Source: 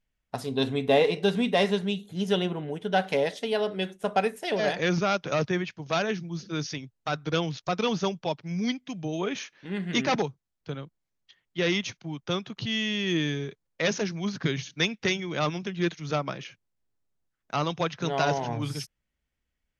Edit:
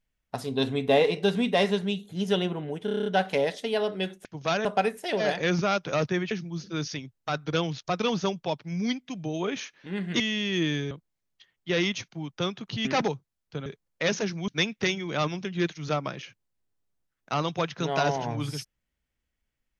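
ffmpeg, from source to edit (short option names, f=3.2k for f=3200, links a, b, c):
-filter_complex "[0:a]asplit=16[a][b][c][d][e][f][g][h][i][j][k][l][m][n][o][p];[a]atrim=end=2.882[q];[b]atrim=start=2.848:end=2.882[r];[c]atrim=start=2.848:end=2.882[s];[d]atrim=start=2.848:end=2.882[t];[e]atrim=start=2.848:end=2.882[u];[f]atrim=start=2.848:end=2.882[v];[g]atrim=start=2.848:end=2.882[w];[h]atrim=start=2.848:end=4.042[x];[i]atrim=start=5.698:end=6.102[y];[j]atrim=start=4.038:end=5.702[z];[k]atrim=start=6.098:end=9.992[aa];[l]atrim=start=12.738:end=13.452[ab];[m]atrim=start=10.798:end=12.742[ac];[n]atrim=start=9.988:end=10.802[ad];[o]atrim=start=13.448:end=14.272[ae];[p]atrim=start=14.698[af];[q][r]acrossfade=d=0.004:c1=hsin:c2=hsin[ag];[ag][s]acrossfade=d=0.004:c1=hsin:c2=hsin[ah];[ah][t]acrossfade=d=0.004:c1=hsin:c2=hsin[ai];[ai][u]acrossfade=d=0.004:c1=hsin:c2=hsin[aj];[aj][v]acrossfade=d=0.004:c1=hsin:c2=hsin[ak];[ak][w]acrossfade=d=0.004:c1=hsin:c2=hsin[al];[al][x]acrossfade=d=0.004:c1=hsin:c2=hsin[am];[am][y]acrossfade=d=0.004:c1=hsin:c2=hsin[an];[an][z]acrossfade=d=0.004:c1=hsin:c2=hsin[ao];[ao][aa]acrossfade=d=0.004:c1=hsin:c2=hsin[ap];[ap][ab]acrossfade=d=0.004:c1=hsin:c2=hsin[aq];[aq][ac]acrossfade=d=0.004:c1=hsin:c2=hsin[ar];[ar][ad]acrossfade=d=0.004:c1=hsin:c2=hsin[as];[as][ae]acrossfade=d=0.004:c1=hsin:c2=hsin[at];[at][af]acrossfade=d=0.004:c1=hsin:c2=hsin"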